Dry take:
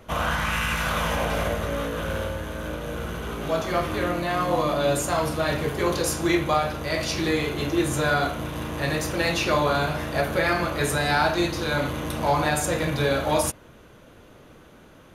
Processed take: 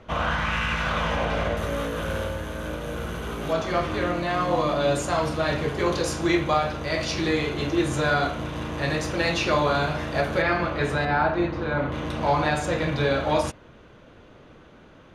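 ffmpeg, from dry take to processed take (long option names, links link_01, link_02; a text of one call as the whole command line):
ffmpeg -i in.wav -af "asetnsamples=nb_out_samples=441:pad=0,asendcmd='1.57 lowpass f 12000;3.53 lowpass f 6500;10.42 lowpass f 3400;11.05 lowpass f 1800;11.92 lowpass f 4600',lowpass=4400" out.wav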